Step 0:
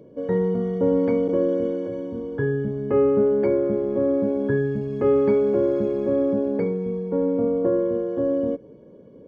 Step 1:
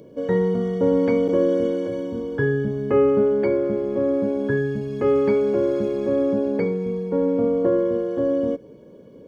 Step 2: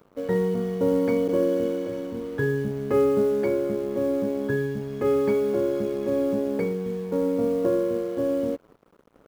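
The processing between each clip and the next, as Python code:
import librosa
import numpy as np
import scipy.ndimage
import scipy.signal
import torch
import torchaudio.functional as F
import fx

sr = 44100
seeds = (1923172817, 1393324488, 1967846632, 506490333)

y1 = fx.rider(x, sr, range_db=10, speed_s=2.0)
y1 = fx.high_shelf(y1, sr, hz=2300.0, db=12.0)
y2 = fx.quant_float(y1, sr, bits=4)
y2 = np.sign(y2) * np.maximum(np.abs(y2) - 10.0 ** (-44.0 / 20.0), 0.0)
y2 = y2 * 10.0 ** (-3.0 / 20.0)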